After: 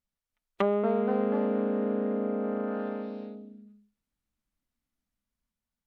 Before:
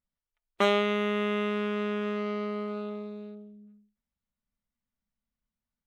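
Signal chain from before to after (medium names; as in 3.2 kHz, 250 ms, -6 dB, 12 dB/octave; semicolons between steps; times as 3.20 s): ever faster or slower copies 298 ms, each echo +2 st, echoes 3; low-pass that closes with the level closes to 710 Hz, closed at -25 dBFS; feedback echo behind a high-pass 126 ms, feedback 64%, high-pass 2.7 kHz, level -23 dB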